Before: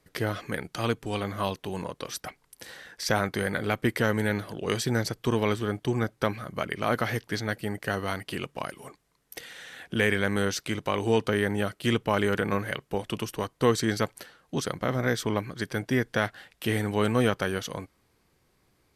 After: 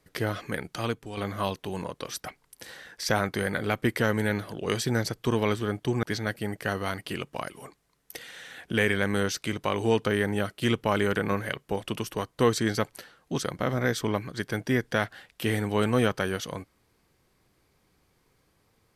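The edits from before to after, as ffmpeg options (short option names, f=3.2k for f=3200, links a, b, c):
-filter_complex "[0:a]asplit=3[a][b][c];[a]atrim=end=1.17,asetpts=PTS-STARTPTS,afade=t=out:st=0.71:d=0.46:silence=0.354813[d];[b]atrim=start=1.17:end=6.032,asetpts=PTS-STARTPTS,afade=t=in:d=0.004:c=hsin:silence=0.354813[e];[c]atrim=start=7.248[f];[d][e]concat=n=2:v=0:a=1[g];[g][f]acrossfade=d=0.004:c1=hsin:c2=hsin"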